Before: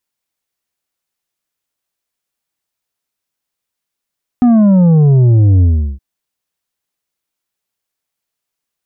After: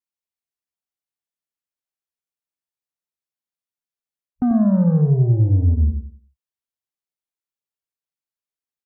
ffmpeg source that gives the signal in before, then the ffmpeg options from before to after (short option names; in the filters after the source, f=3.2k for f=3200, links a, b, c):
-f lavfi -i "aevalsrc='0.501*clip((1.57-t)/0.37,0,1)*tanh(2.11*sin(2*PI*250*1.57/log(65/250)*(exp(log(65/250)*t/1.57)-1)))/tanh(2.11)':d=1.57:s=44100"
-filter_complex "[0:a]afwtdn=0.0631,areverse,acompressor=threshold=-17dB:ratio=6,areverse,asplit=2[a][b];[b]adelay=91,lowpass=f=1.3k:p=1,volume=-4.5dB,asplit=2[c][d];[d]adelay=91,lowpass=f=1.3k:p=1,volume=0.31,asplit=2[e][f];[f]adelay=91,lowpass=f=1.3k:p=1,volume=0.31,asplit=2[g][h];[h]adelay=91,lowpass=f=1.3k:p=1,volume=0.31[i];[a][c][e][g][i]amix=inputs=5:normalize=0"